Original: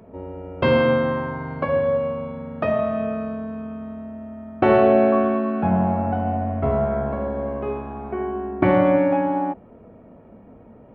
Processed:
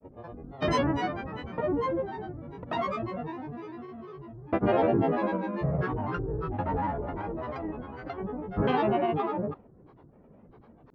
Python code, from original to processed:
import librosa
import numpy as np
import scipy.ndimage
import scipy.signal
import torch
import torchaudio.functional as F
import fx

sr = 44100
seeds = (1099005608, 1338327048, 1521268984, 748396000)

y = fx.granulator(x, sr, seeds[0], grain_ms=100.0, per_s=20.0, spray_ms=100.0, spread_st=12)
y = y * librosa.db_to_amplitude(-7.5)